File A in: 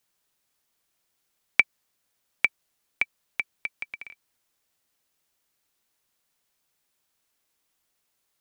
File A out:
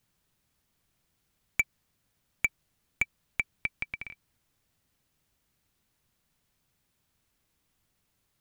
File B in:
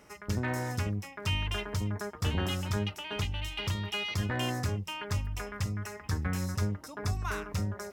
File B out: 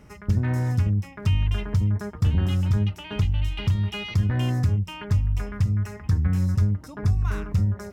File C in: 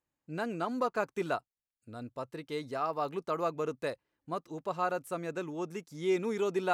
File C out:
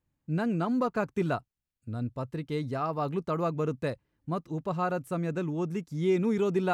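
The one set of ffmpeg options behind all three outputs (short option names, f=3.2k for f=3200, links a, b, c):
-af "asoftclip=type=hard:threshold=-17dB,bass=f=250:g=15,treble=f=4k:g=-3,acompressor=threshold=-22dB:ratio=2,volume=1dB"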